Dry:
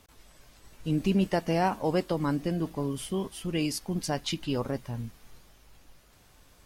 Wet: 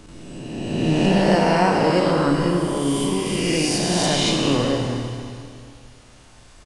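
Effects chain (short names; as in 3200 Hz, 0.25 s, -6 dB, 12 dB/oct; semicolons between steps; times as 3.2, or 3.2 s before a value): spectral swells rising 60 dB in 1.91 s; Schroeder reverb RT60 2.3 s, combs from 25 ms, DRR 1 dB; downsampling 22050 Hz; gain +4.5 dB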